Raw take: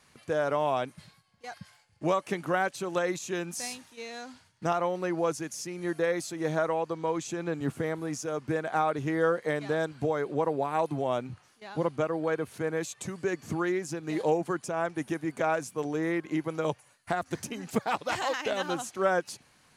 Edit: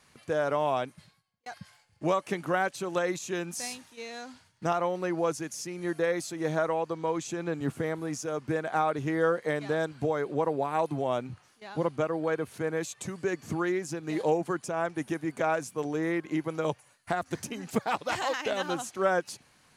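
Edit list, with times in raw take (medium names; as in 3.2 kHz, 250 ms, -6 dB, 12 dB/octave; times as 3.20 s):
0.78–1.46 s: fade out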